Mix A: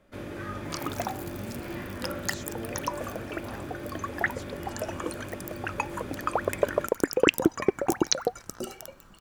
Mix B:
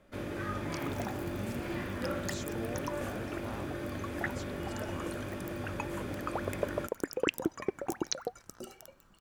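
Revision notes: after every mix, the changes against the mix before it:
second sound −9.5 dB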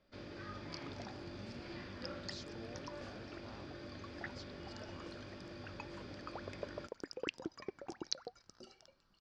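master: add transistor ladder low-pass 5,200 Hz, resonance 70%

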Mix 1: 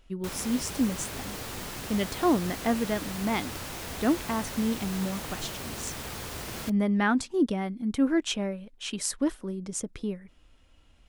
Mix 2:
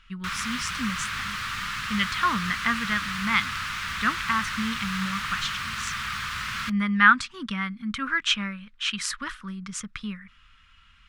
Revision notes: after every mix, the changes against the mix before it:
master: add drawn EQ curve 210 Hz 0 dB, 310 Hz −18 dB, 730 Hz −15 dB, 1,200 Hz +15 dB, 3,400 Hz +9 dB, 15,000 Hz −10 dB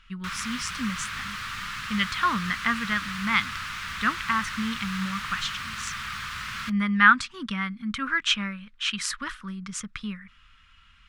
background −3.0 dB

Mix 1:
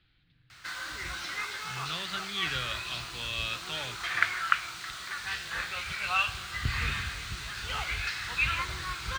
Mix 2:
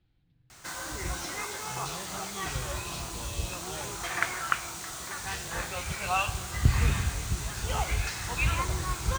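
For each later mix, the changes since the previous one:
background +9.5 dB
master: add flat-topped bell 2,400 Hz −13 dB 2.3 octaves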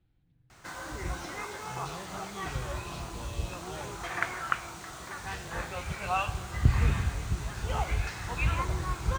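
master: add high-shelf EQ 3,500 Hz −11.5 dB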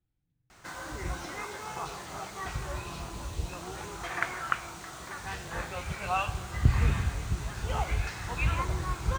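speech −10.5 dB

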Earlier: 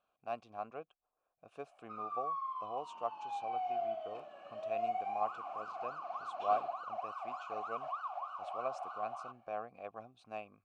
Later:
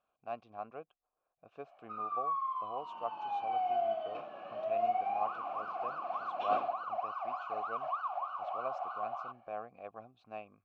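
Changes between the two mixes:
first sound +5.0 dB
second sound +9.5 dB
master: add high-frequency loss of the air 170 metres

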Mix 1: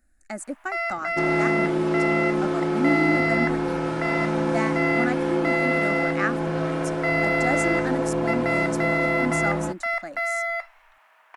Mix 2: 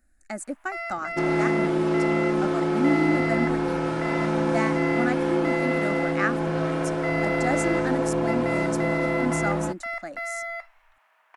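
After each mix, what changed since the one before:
first sound −6.0 dB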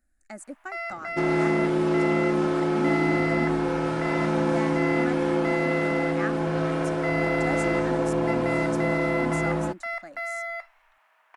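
speech −7.0 dB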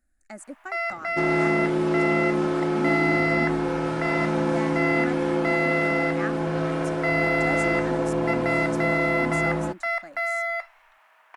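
first sound +5.5 dB

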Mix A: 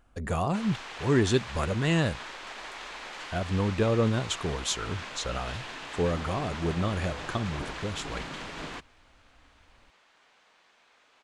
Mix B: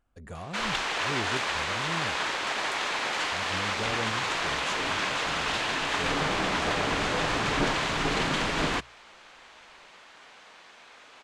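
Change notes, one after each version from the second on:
speech −11.5 dB
background +11.5 dB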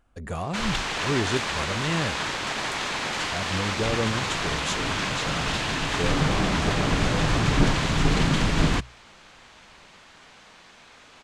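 speech +9.0 dB
background: add bass and treble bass +14 dB, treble +4 dB

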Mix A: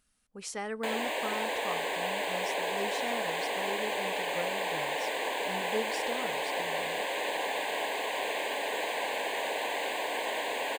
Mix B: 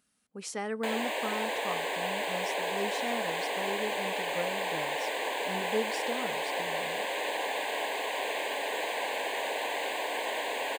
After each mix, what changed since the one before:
speech: add low-shelf EQ 230 Hz +11.5 dB
master: add high-pass filter 210 Hz 12 dB per octave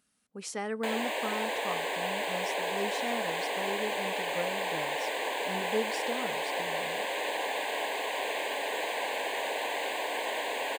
nothing changed

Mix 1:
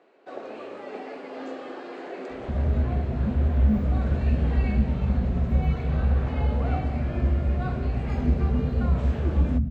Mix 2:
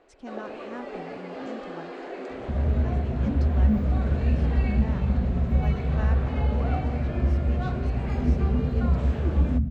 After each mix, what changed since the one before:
speech: unmuted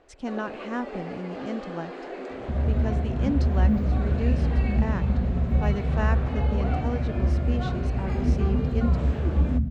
speech +8.5 dB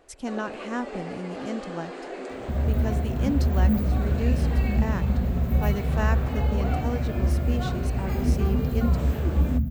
master: remove high-frequency loss of the air 110 metres

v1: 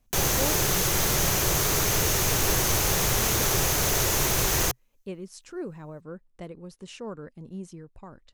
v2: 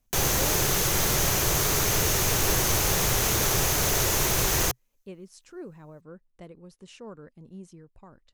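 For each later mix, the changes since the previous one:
speech −5.5 dB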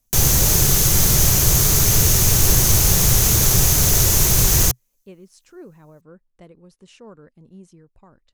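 background: add bass and treble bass +12 dB, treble +10 dB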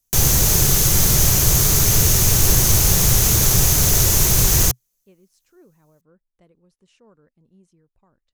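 speech −11.0 dB

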